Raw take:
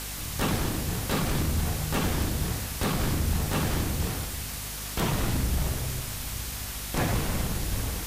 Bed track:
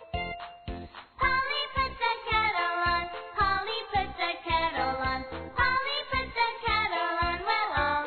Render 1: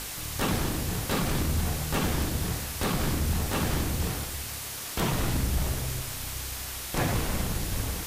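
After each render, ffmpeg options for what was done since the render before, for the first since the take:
-af "bandreject=f=50:t=h:w=4,bandreject=f=100:t=h:w=4,bandreject=f=150:t=h:w=4,bandreject=f=200:t=h:w=4,bandreject=f=250:t=h:w=4"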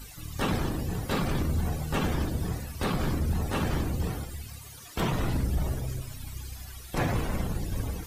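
-af "afftdn=nr=17:nf=-37"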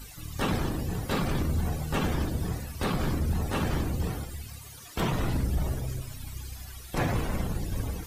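-af anull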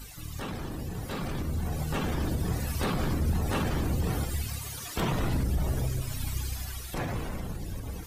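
-af "alimiter=level_in=3.5dB:limit=-24dB:level=0:latency=1:release=185,volume=-3.5dB,dynaudnorm=f=260:g=13:m=7.5dB"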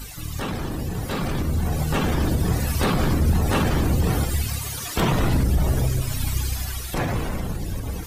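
-af "volume=8dB"

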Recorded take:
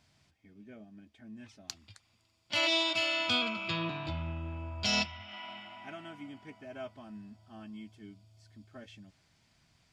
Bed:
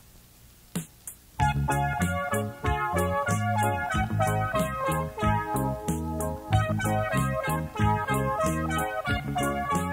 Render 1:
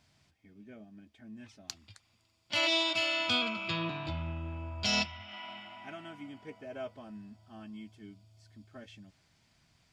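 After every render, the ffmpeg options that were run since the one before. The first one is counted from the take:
-filter_complex "[0:a]asettb=1/sr,asplit=3[a][b][c];[a]atrim=end=6.394[d];[b]atrim=start=6.39:end=7.11,asetpts=PTS-STARTPTS,afade=t=in:d=0.004:c=qsin,afade=t=out:st=0.716:d=0.004:c=qsin,equalizer=f=490:w=4.4:g=12.5[e];[c]atrim=start=7.106[f];[d][e]acrossfade=d=0.004:c1=hsin:c2=qsin[g];[g][f]acrossfade=d=0.004:c1=qsin:c2=hsin"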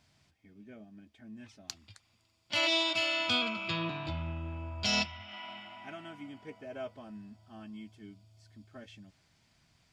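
-af anull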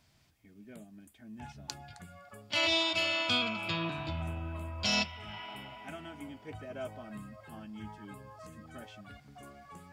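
-filter_complex "[1:a]volume=-24dB[a];[0:a][a]amix=inputs=2:normalize=0"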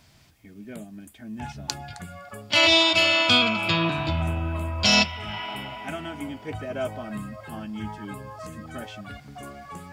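-af "volume=11dB"

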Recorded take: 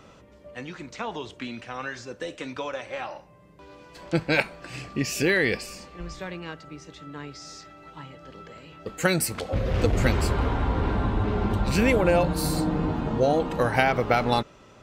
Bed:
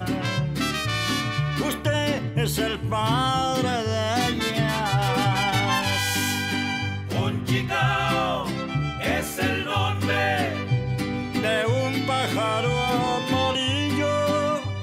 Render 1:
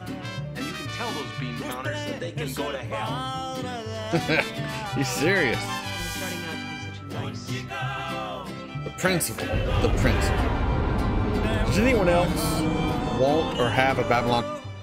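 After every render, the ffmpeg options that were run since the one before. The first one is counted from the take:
-filter_complex "[1:a]volume=-8dB[a];[0:a][a]amix=inputs=2:normalize=0"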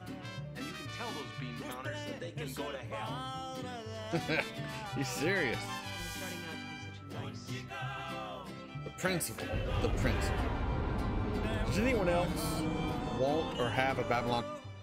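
-af "volume=-10dB"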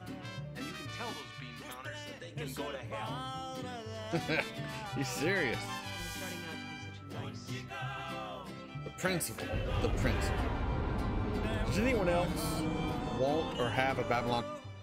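-filter_complex "[0:a]asettb=1/sr,asplit=3[a][b][c];[a]atrim=end=1.134[d];[b]atrim=start=1.13:end=2.31,asetpts=PTS-STARTPTS,afade=t=in:d=0.004:c=qsin,afade=t=out:st=1.176:d=0.004:c=qsin,equalizer=f=270:w=0.34:g=-7[e];[c]atrim=start=2.306[f];[d][e]acrossfade=d=0.004:c1=hsin:c2=qsin[g];[g][f]acrossfade=d=0.004:c1=qsin:c2=hsin"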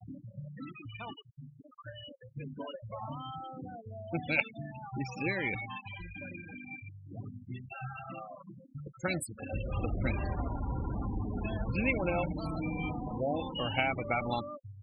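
-af "afftfilt=real='re*gte(hypot(re,im),0.0282)':imag='im*gte(hypot(re,im),0.0282)':win_size=1024:overlap=0.75,superequalizer=7b=0.501:11b=0.631:12b=2.24"

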